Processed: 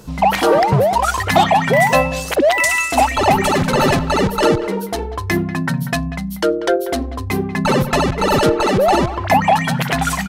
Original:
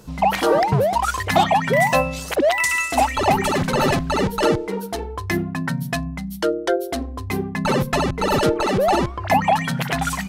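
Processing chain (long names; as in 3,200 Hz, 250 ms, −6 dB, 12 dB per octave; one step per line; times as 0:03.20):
far-end echo of a speakerphone 190 ms, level −14 dB
in parallel at −10 dB: soft clipping −18.5 dBFS, distortion −10 dB
on the sum: level +2.5 dB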